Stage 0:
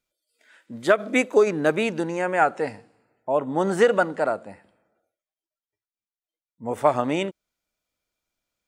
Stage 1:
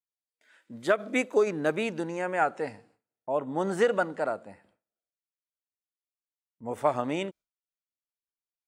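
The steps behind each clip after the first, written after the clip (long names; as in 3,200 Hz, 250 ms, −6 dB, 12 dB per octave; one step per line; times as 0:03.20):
noise gate with hold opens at −49 dBFS
level −6 dB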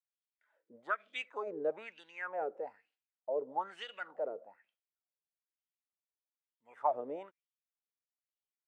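LFO wah 1.1 Hz 430–3,300 Hz, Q 6.2
level +1 dB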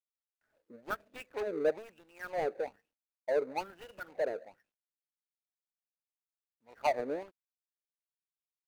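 running median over 41 samples
level +6.5 dB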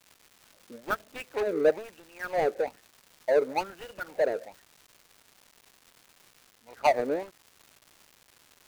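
surface crackle 460 per second −50 dBFS
level +7 dB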